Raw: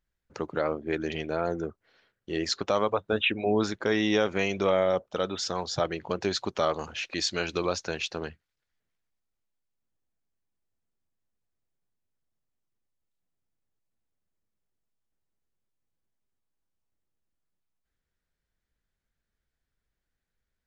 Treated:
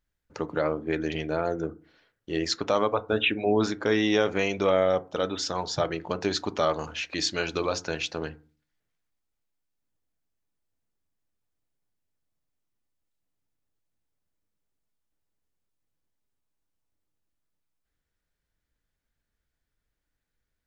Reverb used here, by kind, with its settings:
feedback delay network reverb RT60 0.36 s, low-frequency decay 1.45×, high-frequency decay 0.4×, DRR 12 dB
level +1 dB

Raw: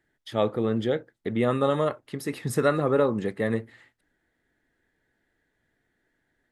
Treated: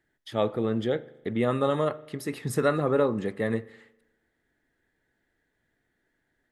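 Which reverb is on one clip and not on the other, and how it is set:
spring reverb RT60 1 s, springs 39 ms, chirp 80 ms, DRR 18.5 dB
level −1.5 dB

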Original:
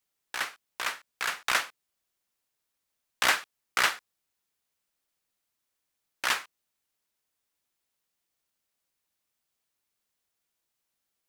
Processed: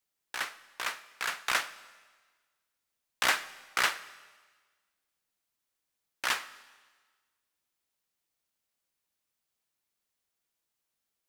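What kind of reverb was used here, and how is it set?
comb and all-pass reverb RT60 1.4 s, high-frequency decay 1×, pre-delay 35 ms, DRR 17 dB
level −2.5 dB

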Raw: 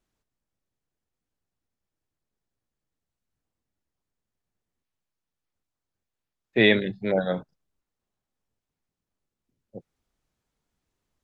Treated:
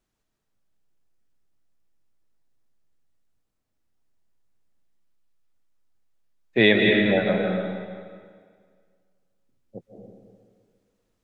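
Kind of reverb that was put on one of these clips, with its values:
comb and all-pass reverb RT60 1.9 s, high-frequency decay 0.85×, pre-delay 120 ms, DRR 0.5 dB
level +1 dB

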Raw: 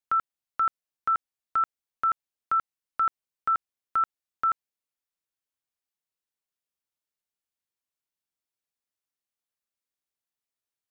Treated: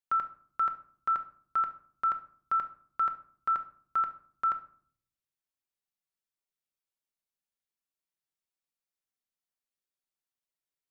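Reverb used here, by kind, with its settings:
rectangular room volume 660 cubic metres, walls furnished, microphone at 1.1 metres
level −5 dB

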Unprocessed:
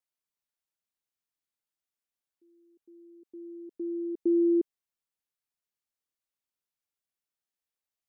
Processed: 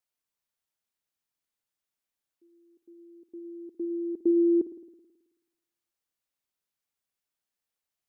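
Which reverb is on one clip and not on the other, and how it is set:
spring reverb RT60 1.1 s, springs 54 ms, DRR 11.5 dB
level +2.5 dB

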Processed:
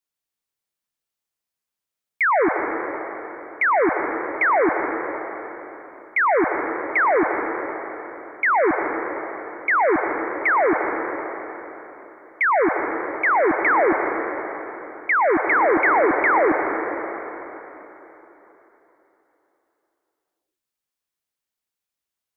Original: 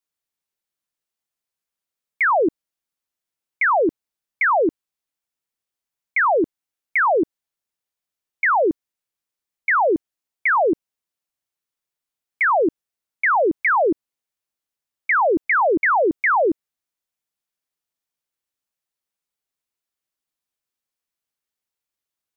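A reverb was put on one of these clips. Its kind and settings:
dense smooth reverb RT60 3.7 s, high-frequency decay 0.85×, pre-delay 95 ms, DRR 3.5 dB
level −1 dB

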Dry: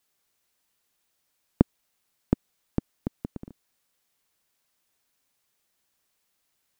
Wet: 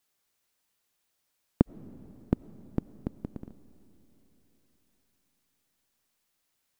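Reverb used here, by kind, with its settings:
comb and all-pass reverb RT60 4.1 s, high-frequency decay 0.9×, pre-delay 50 ms, DRR 17.5 dB
level −2.5 dB

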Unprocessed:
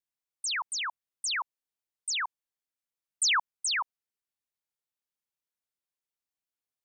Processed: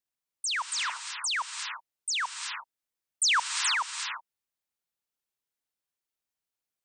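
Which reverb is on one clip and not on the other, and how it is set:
reverb whose tail is shaped and stops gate 390 ms rising, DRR 5.5 dB
level +1 dB

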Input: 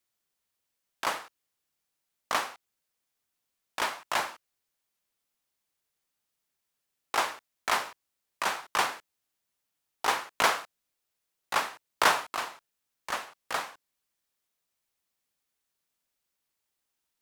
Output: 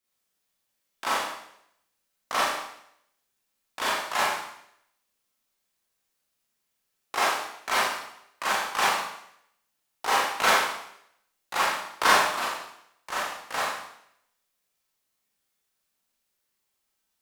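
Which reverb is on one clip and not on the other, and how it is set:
four-comb reverb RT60 0.73 s, combs from 29 ms, DRR −8 dB
level −4 dB

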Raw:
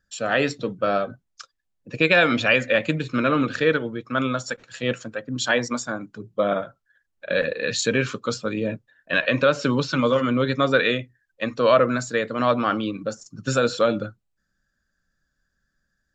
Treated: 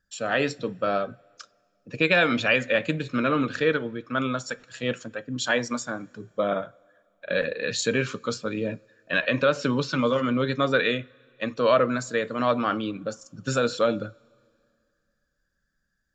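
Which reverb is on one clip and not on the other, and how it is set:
coupled-rooms reverb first 0.24 s, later 2.4 s, from −21 dB, DRR 17.5 dB
level −3 dB

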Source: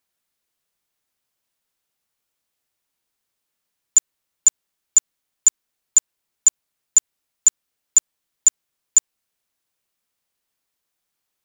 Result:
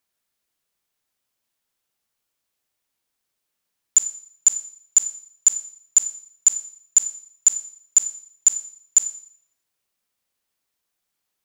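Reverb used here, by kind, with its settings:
four-comb reverb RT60 0.57 s, combs from 28 ms, DRR 9.5 dB
level −1 dB

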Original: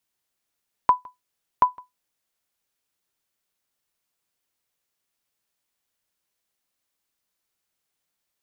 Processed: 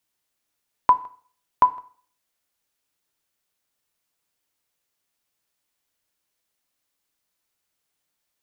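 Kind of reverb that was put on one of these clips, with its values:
feedback delay network reverb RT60 0.5 s, low-frequency decay 0.95×, high-frequency decay 0.95×, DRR 12 dB
level +1.5 dB

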